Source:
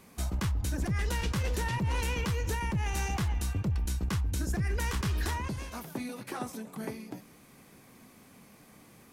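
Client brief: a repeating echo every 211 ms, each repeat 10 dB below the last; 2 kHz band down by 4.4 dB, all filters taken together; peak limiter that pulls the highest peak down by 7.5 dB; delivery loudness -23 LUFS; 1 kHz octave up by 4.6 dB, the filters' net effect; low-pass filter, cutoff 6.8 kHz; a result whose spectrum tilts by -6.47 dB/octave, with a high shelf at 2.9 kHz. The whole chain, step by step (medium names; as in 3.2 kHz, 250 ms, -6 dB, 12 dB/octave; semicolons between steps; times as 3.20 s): low-pass 6.8 kHz; peaking EQ 1 kHz +7 dB; peaking EQ 2 kHz -5 dB; treble shelf 2.9 kHz -7 dB; peak limiter -29 dBFS; feedback delay 211 ms, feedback 32%, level -10 dB; trim +13.5 dB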